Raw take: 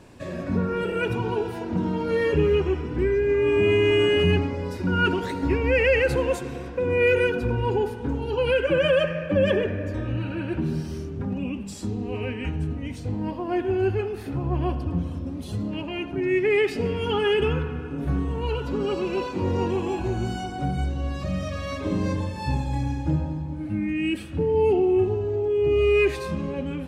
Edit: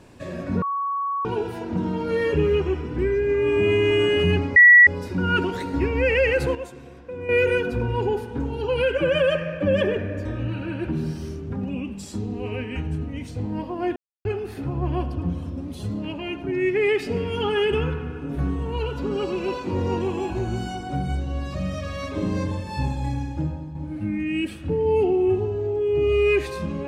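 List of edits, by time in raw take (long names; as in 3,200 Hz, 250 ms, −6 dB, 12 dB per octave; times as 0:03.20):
0:00.62–0:01.25: beep over 1,120 Hz −22.5 dBFS
0:04.56: insert tone 1,940 Hz −7 dBFS 0.31 s
0:06.24–0:06.98: clip gain −9.5 dB
0:13.65–0:13.94: silence
0:22.75–0:23.44: fade out, to −6.5 dB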